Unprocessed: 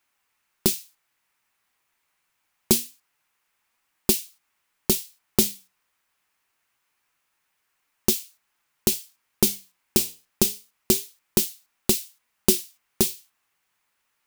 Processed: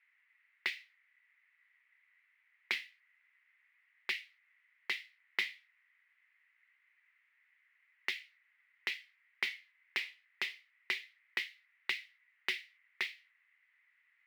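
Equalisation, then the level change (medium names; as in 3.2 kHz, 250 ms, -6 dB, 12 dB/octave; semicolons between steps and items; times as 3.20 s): resonant high-pass 2 kHz, resonance Q 9.4; low-pass 3.9 kHz 6 dB/octave; distance through air 390 m; 0.0 dB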